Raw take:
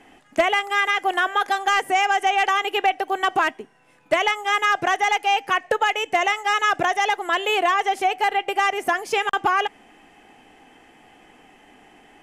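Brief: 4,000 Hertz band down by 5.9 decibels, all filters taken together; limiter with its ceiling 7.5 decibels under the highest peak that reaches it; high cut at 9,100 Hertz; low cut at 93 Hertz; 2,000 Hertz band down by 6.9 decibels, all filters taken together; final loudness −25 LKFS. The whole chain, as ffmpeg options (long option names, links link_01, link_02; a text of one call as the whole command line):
ffmpeg -i in.wav -af "highpass=93,lowpass=9100,equalizer=frequency=2000:width_type=o:gain=-7.5,equalizer=frequency=4000:width_type=o:gain=-4.5,volume=1.5dB,alimiter=limit=-15.5dB:level=0:latency=1" out.wav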